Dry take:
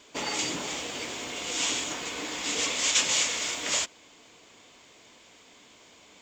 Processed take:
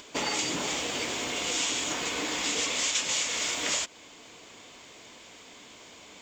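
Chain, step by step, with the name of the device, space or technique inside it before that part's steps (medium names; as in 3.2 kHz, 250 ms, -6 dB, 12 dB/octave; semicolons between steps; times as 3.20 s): upward and downward compression (upward compressor, threshold -51 dBFS; compression 4:1, threshold -31 dBFS, peak gain reduction 10.5 dB); trim +4.5 dB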